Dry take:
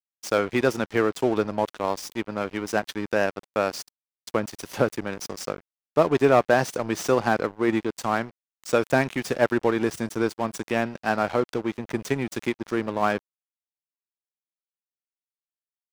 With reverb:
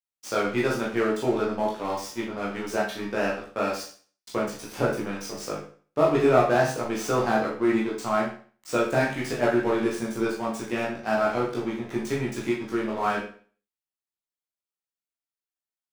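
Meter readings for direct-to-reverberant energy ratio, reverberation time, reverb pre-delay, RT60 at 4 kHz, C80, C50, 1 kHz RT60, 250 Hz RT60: −5.5 dB, 0.45 s, 14 ms, 0.40 s, 9.5 dB, 5.0 dB, 0.45 s, 0.45 s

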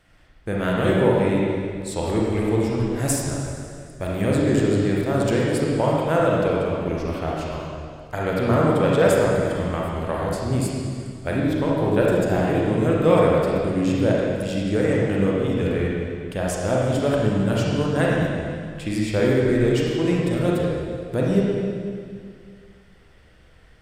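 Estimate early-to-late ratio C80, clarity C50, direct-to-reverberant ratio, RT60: −0.5 dB, −2.0 dB, −4.5 dB, 2.2 s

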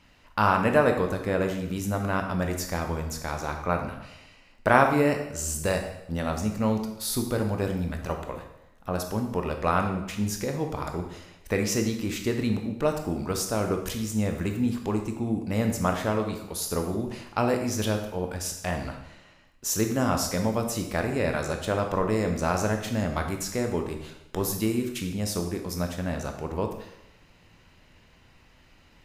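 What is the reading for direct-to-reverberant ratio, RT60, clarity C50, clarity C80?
4.0 dB, 0.90 s, 6.5 dB, 9.5 dB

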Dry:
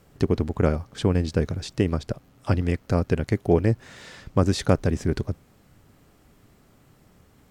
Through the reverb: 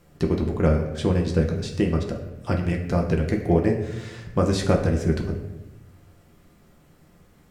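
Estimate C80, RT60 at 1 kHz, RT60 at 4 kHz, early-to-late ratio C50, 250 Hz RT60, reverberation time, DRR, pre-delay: 9.0 dB, 0.85 s, 0.65 s, 7.0 dB, 1.3 s, 1.0 s, 0.0 dB, 6 ms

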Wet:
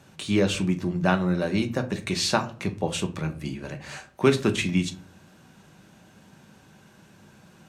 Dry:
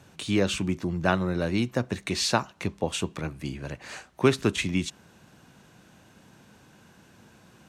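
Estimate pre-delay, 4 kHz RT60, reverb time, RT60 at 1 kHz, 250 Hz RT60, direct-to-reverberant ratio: 4 ms, 0.25 s, 0.45 s, 0.40 s, 0.65 s, 6.5 dB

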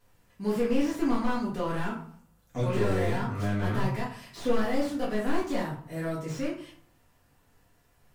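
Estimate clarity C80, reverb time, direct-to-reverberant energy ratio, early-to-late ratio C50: 10.5 dB, 0.55 s, −6.5 dB, 5.5 dB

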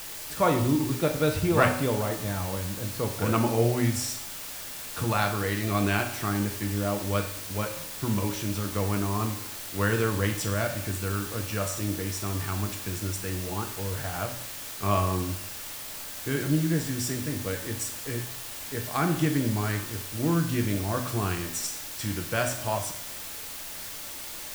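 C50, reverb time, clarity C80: 8.0 dB, 0.75 s, 11.0 dB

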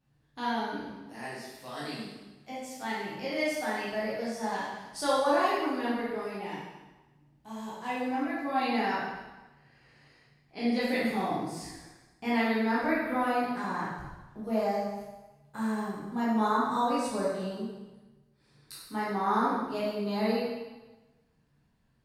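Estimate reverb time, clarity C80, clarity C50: 1.2 s, 2.5 dB, −1.5 dB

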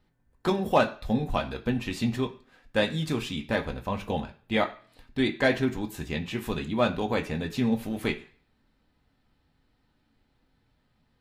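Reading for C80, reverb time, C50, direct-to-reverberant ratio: 19.0 dB, non-exponential decay, 15.0 dB, 3.0 dB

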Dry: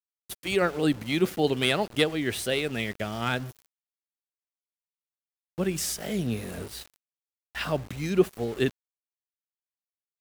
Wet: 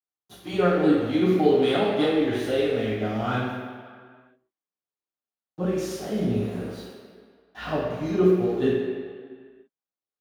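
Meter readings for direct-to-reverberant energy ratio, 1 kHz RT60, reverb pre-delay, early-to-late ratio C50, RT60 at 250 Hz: −12.0 dB, 2.0 s, 3 ms, −0.5 dB, 1.8 s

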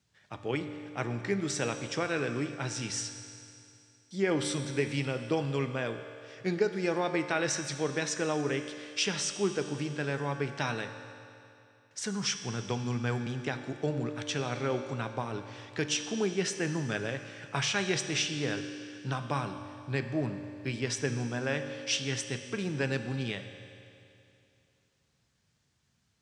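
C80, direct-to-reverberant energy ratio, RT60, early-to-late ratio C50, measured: 9.0 dB, 7.0 dB, 2.7 s, 8.5 dB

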